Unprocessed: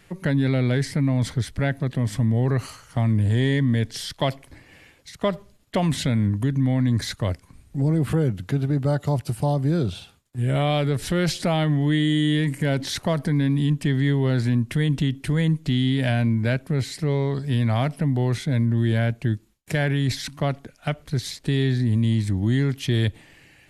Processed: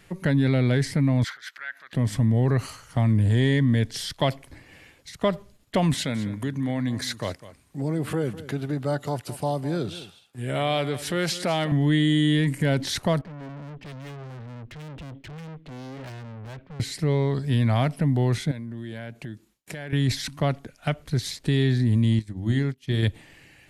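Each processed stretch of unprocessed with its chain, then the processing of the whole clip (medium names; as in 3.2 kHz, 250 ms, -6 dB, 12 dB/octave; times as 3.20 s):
1.24–1.93 s: peaking EQ 9.2 kHz -13 dB 0.47 oct + compression 8:1, threshold -29 dBFS + resonant high-pass 1.5 kHz, resonance Q 3.5
5.94–11.72 s: high-pass 340 Hz 6 dB/octave + delay 203 ms -15.5 dB
13.21–16.80 s: low-pass 3.5 kHz 24 dB/octave + valve stage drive 37 dB, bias 0.7 + three bands expanded up and down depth 70%
18.51–19.93 s: high-pass 42 Hz + peaking EQ 76 Hz -13.5 dB 1.2 oct + compression, threshold -32 dBFS
22.19–23.03 s: hum notches 50/100/150/200/250/300/350/400 Hz + upward expansion 2.5:1, over -37 dBFS
whole clip: none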